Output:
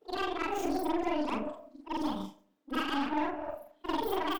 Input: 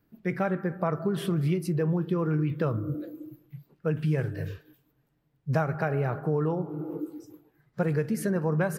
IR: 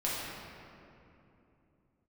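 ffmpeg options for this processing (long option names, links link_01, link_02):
-filter_complex "[0:a]afftfilt=real='re':imag='-im':win_size=8192:overlap=0.75,highpass=90,bandreject=frequency=5500:width=15,aeval=exprs='0.119*(cos(1*acos(clip(val(0)/0.119,-1,1)))-cos(1*PI/2))+0.00596*(cos(4*acos(clip(val(0)/0.119,-1,1)))-cos(4*PI/2))+0.00531*(cos(8*acos(clip(val(0)/0.119,-1,1)))-cos(8*PI/2))':channel_layout=same,aexciter=amount=1.9:drive=4.3:freq=6000,asplit=2[link_01][link_02];[link_02]adelay=172,lowpass=frequency=1200:poles=1,volume=-20dB,asplit=2[link_03][link_04];[link_04]adelay=172,lowpass=frequency=1200:poles=1,volume=0.44,asplit=2[link_05][link_06];[link_06]adelay=172,lowpass=frequency=1200:poles=1,volume=0.44[link_07];[link_03][link_05][link_07]amix=inputs=3:normalize=0[link_08];[link_01][link_08]amix=inputs=2:normalize=0,asetrate=88200,aresample=44100"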